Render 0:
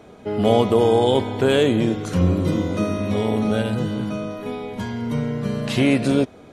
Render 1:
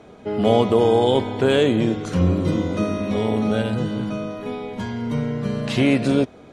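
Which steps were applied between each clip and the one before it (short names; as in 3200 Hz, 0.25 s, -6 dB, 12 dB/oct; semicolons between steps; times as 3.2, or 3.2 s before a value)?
Bessel low-pass 8000 Hz, order 2; notches 50/100 Hz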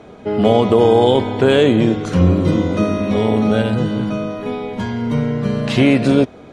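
high shelf 6400 Hz -5.5 dB; maximiser +6.5 dB; gain -1 dB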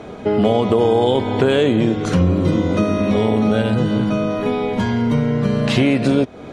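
compressor 2.5:1, threshold -22 dBFS, peak gain reduction 10 dB; gain +6 dB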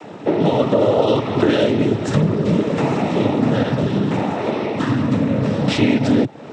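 noise vocoder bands 12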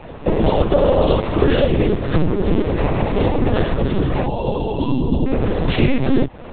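companded quantiser 6-bit; spectral delete 4.27–5.26, 1100–2600 Hz; LPC vocoder at 8 kHz pitch kept; gain +1 dB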